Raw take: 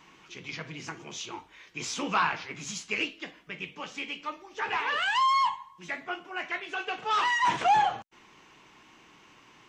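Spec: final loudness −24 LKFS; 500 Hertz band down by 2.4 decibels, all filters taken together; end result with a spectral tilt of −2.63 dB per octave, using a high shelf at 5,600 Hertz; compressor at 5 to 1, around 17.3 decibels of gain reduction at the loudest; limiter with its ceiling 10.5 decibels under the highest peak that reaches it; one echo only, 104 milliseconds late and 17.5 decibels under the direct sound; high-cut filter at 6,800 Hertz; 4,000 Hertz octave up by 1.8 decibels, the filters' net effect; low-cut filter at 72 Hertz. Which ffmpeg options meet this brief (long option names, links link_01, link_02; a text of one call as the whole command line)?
ffmpeg -i in.wav -af "highpass=72,lowpass=6800,equalizer=frequency=500:width_type=o:gain=-3.5,equalizer=frequency=4000:width_type=o:gain=6,highshelf=frequency=5600:gain=-8,acompressor=threshold=-41dB:ratio=5,alimiter=level_in=14dB:limit=-24dB:level=0:latency=1,volume=-14dB,aecho=1:1:104:0.133,volume=23dB" out.wav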